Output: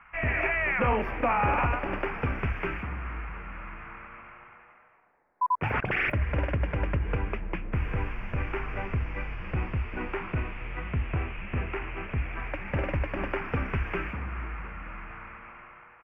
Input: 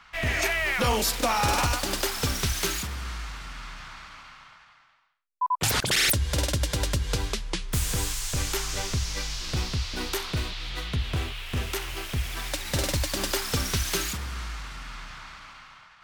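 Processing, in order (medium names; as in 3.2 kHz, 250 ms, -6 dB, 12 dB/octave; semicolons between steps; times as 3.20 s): elliptic low-pass 2.5 kHz, stop band 40 dB; frequency-shifting echo 223 ms, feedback 64%, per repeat -130 Hz, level -16.5 dB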